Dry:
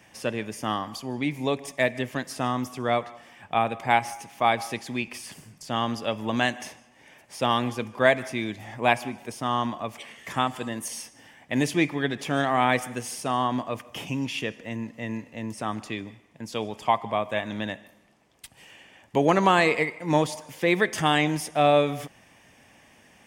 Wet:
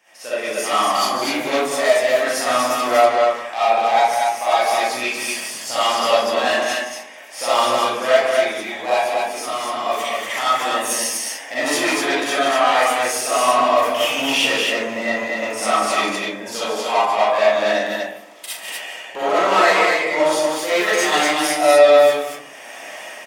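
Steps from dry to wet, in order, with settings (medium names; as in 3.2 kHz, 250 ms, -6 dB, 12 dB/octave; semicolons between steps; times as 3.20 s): level rider gain up to 16 dB; saturation -16 dBFS, distortion -7 dB; 8.89–9.86 s: compression, threshold -25 dBFS, peak gain reduction 7 dB; high-pass 510 Hz 12 dB/octave; loudspeakers at several distances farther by 14 m -7 dB, 50 m -10 dB, 83 m -3 dB; reverberation RT60 0.55 s, pre-delay 20 ms, DRR -10 dB; trim -5 dB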